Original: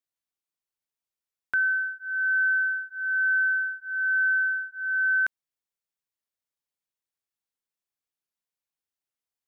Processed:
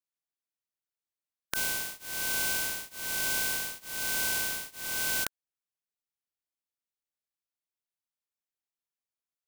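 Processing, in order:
compressing power law on the bin magnitudes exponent 0.2
level −6 dB

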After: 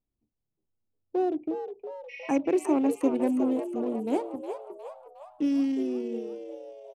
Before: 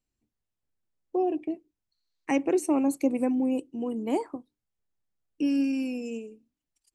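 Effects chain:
adaptive Wiener filter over 25 samples
healed spectral selection 0:02.12–0:02.34, 1,800–5,800 Hz after
echo with shifted repeats 360 ms, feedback 50%, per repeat +96 Hz, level −9 dB

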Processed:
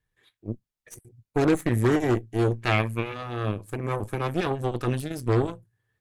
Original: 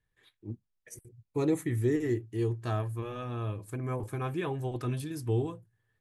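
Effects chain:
harmonic generator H 5 −24 dB, 6 −15 dB, 7 −20 dB, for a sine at −18 dBFS
0:02.58–0:03.14: parametric band 2,300 Hz +14 dB 0.64 octaves
level +5.5 dB

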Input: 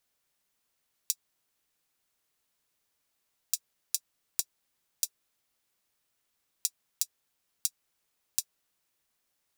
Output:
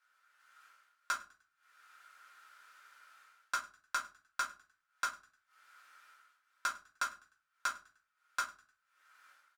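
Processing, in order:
stylus tracing distortion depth 0.13 ms
spectral tilt +2.5 dB per octave
automatic gain control gain up to 15 dB
transient designer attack +1 dB, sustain −11 dB
in parallel at −2 dB: downward compressor, threshold −36 dBFS, peak gain reduction 18.5 dB
on the sum: asymmetric clip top −17.5 dBFS, bottom −3.5 dBFS
resonant band-pass 1,400 Hz, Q 9.5
soft clipping −31.5 dBFS, distortion −25 dB
on a send: echo with shifted repeats 101 ms, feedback 37%, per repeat +34 Hz, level −22.5 dB
on the sum: rectangular room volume 120 cubic metres, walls furnished, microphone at 2.1 metres
level +12.5 dB

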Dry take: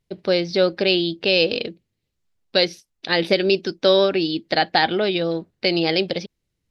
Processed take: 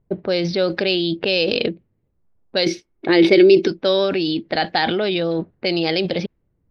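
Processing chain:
low-pass that shuts in the quiet parts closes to 1,000 Hz, open at −13 dBFS
in parallel at +2.5 dB: compressor whose output falls as the input rises −29 dBFS, ratio −1
0:02.66–0:03.68: on the sum: hollow resonant body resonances 350/2,200 Hz, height 14 dB
one half of a high-frequency compander decoder only
level −3 dB

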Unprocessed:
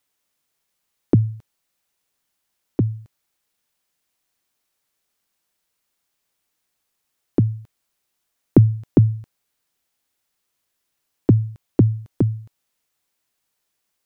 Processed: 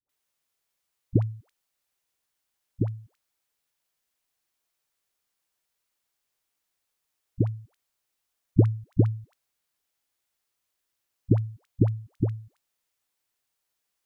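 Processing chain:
parametric band 210 Hz −4.5 dB 1.3 octaves
all-pass dispersion highs, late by 93 ms, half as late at 490 Hz
level −5 dB

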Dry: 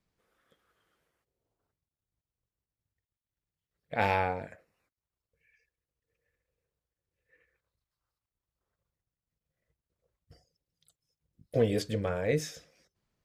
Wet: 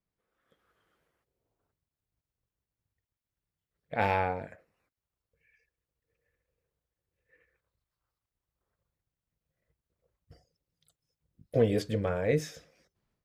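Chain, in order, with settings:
high-shelf EQ 9,200 Hz +8.5 dB
automatic gain control gain up to 10.5 dB
high-shelf EQ 4,400 Hz −11 dB
level −8.5 dB

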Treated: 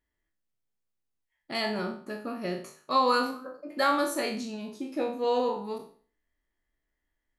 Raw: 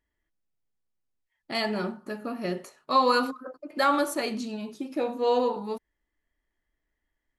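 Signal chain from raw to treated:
peak hold with a decay on every bin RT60 0.44 s
level −3 dB

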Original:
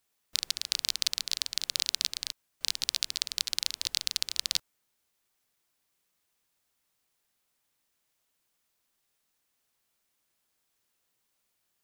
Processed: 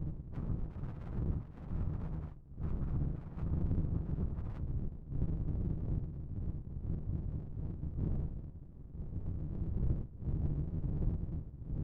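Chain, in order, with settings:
partials spread apart or drawn together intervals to 110%
wind on the microphone 93 Hz −42 dBFS
elliptic low-pass filter 1,200 Hz, stop band 60 dB
parametric band 160 Hz +13 dB 0.84 octaves
downward compressor 3 to 1, threshold −45 dBFS, peak gain reduction 16 dB
flanger 0.18 Hz, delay 6.6 ms, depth 7.9 ms, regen −55%
soft clipping −40 dBFS, distortion −22 dB
pitch-shifted copies added −12 semitones −3 dB
windowed peak hold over 65 samples
level +15 dB

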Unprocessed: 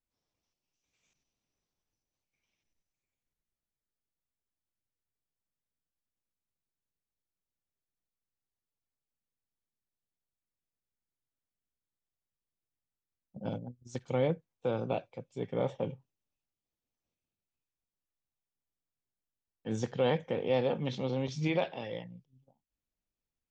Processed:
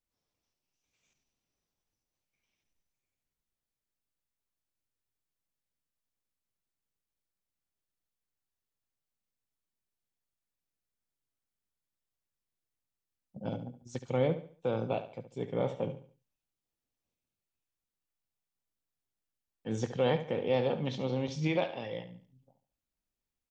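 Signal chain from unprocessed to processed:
repeating echo 71 ms, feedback 35%, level −12 dB

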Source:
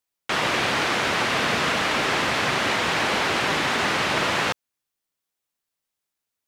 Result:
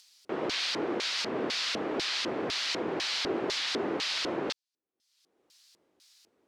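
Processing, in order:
upward compression, threshold −30 dBFS
auto-filter band-pass square 2 Hz 360–4,600 Hz
wow of a warped record 78 rpm, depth 100 cents
level +2 dB

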